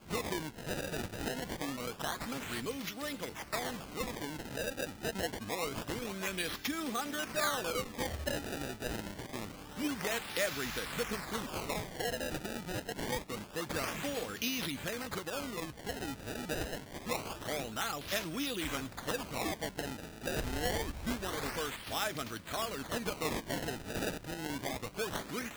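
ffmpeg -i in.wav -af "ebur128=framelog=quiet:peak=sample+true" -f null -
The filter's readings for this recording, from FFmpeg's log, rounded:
Integrated loudness:
  I:         -37.3 LUFS
  Threshold: -47.3 LUFS
Loudness range:
  LRA:         2.6 LU
  Threshold: -57.2 LUFS
  LRA low:   -38.5 LUFS
  LRA high:  -35.9 LUFS
Sample peak:
  Peak:      -17.7 dBFS
True peak:
  Peak:      -16.5 dBFS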